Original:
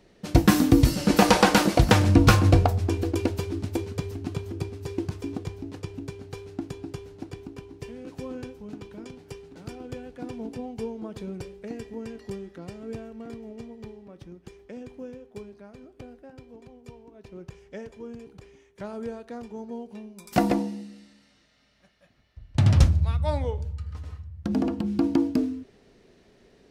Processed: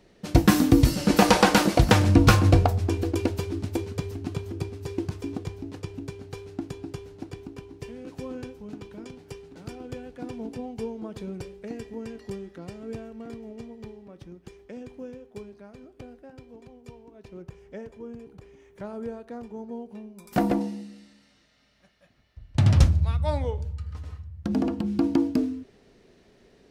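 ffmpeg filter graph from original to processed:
-filter_complex "[0:a]asettb=1/sr,asplit=3[s0][s1][s2];[s0]atrim=end=17.424[s3];[s1]atrim=start=17.42:end=20.61,asetpts=PTS-STARTPTS,afade=t=in:d=0.004:c=qsin,afade=t=out:st=3.186:d=0.004:c=qsin,equalizer=f=5300:w=0.4:g=-6.5,acompressor=mode=upward:threshold=0.00501:ratio=2.5:attack=3.2:release=140:knee=2.83:detection=peak,asoftclip=type=hard:threshold=0.178[s4];[s2]atrim=start=20.606[s5];[s3][s4]acrossfade=d=0.004:c1=hsin:c2=qsin[s6];[s6][s5]acrossfade=d=0.004:c1=qsin:c2=hsin"

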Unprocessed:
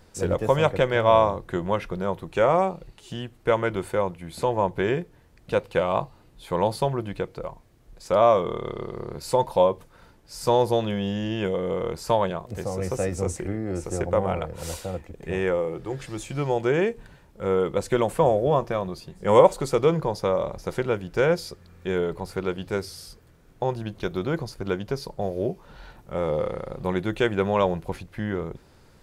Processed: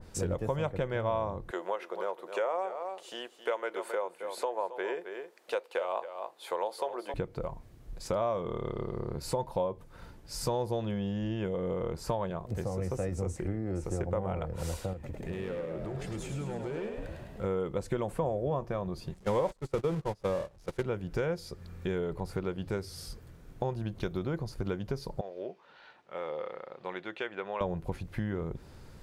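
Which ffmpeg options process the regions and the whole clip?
-filter_complex "[0:a]asettb=1/sr,asplit=3[s0][s1][s2];[s0]atrim=end=1.514[s3];[s1]atrim=start=1.51:end=7.14,asetpts=PTS-STARTPTS,afade=t=in:d=0.004:c=qsin,afade=t=out:st=5.626:d=0.004:c=qsin,highpass=f=430:w=0.5412,highpass=f=430:w=1.3066,aecho=1:1:268:0.224,atrim=end_sample=248283[s4];[s2]atrim=start=7.136[s5];[s3][s4]acrossfade=d=0.004:c1=hsin:c2=qsin[s6];[s6][s5]acrossfade=d=0.004:c1=qsin:c2=hsin,asettb=1/sr,asplit=3[s7][s8][s9];[s7]atrim=end=14.934[s10];[s8]atrim=start=14.93:end=17.44,asetpts=PTS-STARTPTS,afade=t=in:d=0.004:c=qsin,afade=t=out:st=2.506:d=0.004:c=qsin,acompressor=threshold=0.0112:ratio=2.5:attack=3.2:release=140:knee=1:detection=peak,volume=44.7,asoftclip=hard,volume=0.0224,asplit=9[s11][s12][s13][s14][s15][s16][s17][s18][s19];[s12]adelay=104,afreqshift=48,volume=0.531[s20];[s13]adelay=208,afreqshift=96,volume=0.309[s21];[s14]adelay=312,afreqshift=144,volume=0.178[s22];[s15]adelay=416,afreqshift=192,volume=0.104[s23];[s16]adelay=520,afreqshift=240,volume=0.0603[s24];[s17]adelay=624,afreqshift=288,volume=0.0347[s25];[s18]adelay=728,afreqshift=336,volume=0.0202[s26];[s19]adelay=832,afreqshift=384,volume=0.0117[s27];[s11][s20][s21][s22][s23][s24][s25][s26][s27]amix=inputs=9:normalize=0,atrim=end_sample=110691[s28];[s9]atrim=start=17.436[s29];[s10][s28]acrossfade=d=0.004:c1=hsin:c2=qsin[s30];[s30][s29]acrossfade=d=0.004:c1=qsin:c2=hsin,asettb=1/sr,asplit=3[s31][s32][s33];[s31]atrim=end=19.144[s34];[s32]atrim=start=19.14:end=20.82,asetpts=PTS-STARTPTS,afade=t=in:d=0.004:c=qsin,afade=t=out:st=1.676:d=0.004:c=qsin,aeval=exprs='val(0)+0.5*0.0631*sgn(val(0))':c=same,agate=range=0.0316:threshold=0.0794:ratio=16:release=100:detection=peak,lowpass=11000[s35];[s33]atrim=start=20.816[s36];[s34][s35]acrossfade=d=0.004:c1=hsin:c2=qsin[s37];[s37][s36]acrossfade=d=0.004:c1=qsin:c2=hsin,asettb=1/sr,asplit=3[s38][s39][s40];[s38]atrim=end=25.214[s41];[s39]atrim=start=25.21:end=27.61,asetpts=PTS-STARTPTS,afade=t=in:d=0.004:c=qsin,afade=t=out:st=2.396:d=0.004:c=qsin,highpass=700,lowpass=3100,equalizer=f=910:w=0.57:g=-6.5[s42];[s40]atrim=start=27.606[s43];[s41][s42]acrossfade=d=0.004:c1=hsin:c2=qsin[s44];[s44][s43]acrossfade=d=0.004:c1=qsin:c2=hsin,lowshelf=f=190:g=6.5,acompressor=threshold=0.0251:ratio=3,adynamicequalizer=threshold=0.00355:dfrequency=2000:dqfactor=0.7:tfrequency=2000:tqfactor=0.7:attack=5:release=100:ratio=0.375:range=2.5:mode=cutabove:tftype=highshelf"

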